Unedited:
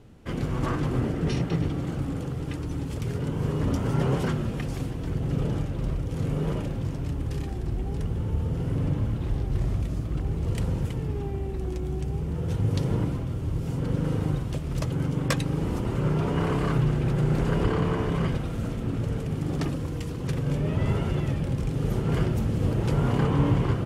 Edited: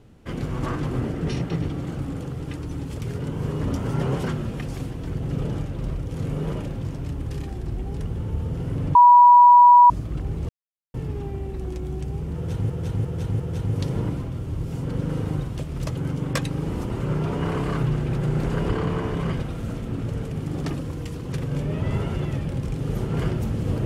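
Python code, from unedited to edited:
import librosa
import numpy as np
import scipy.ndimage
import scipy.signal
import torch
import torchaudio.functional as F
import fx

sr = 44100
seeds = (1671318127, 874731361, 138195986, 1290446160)

y = fx.edit(x, sr, fx.bleep(start_s=8.95, length_s=0.95, hz=972.0, db=-7.5),
    fx.silence(start_s=10.49, length_s=0.45),
    fx.repeat(start_s=12.35, length_s=0.35, count=4), tone=tone)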